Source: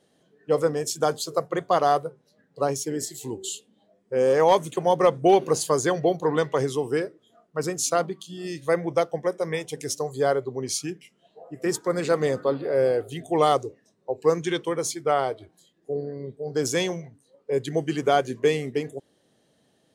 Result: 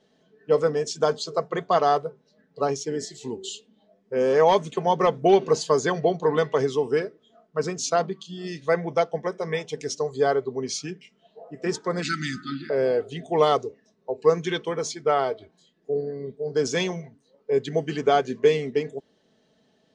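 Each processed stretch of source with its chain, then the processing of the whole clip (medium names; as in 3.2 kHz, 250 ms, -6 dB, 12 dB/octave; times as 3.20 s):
12.02–12.70 s: brick-wall FIR band-stop 360–1200 Hz + treble shelf 2.6 kHz +9 dB
whole clip: low-pass 6.2 kHz 24 dB/octave; comb 4.6 ms, depth 47%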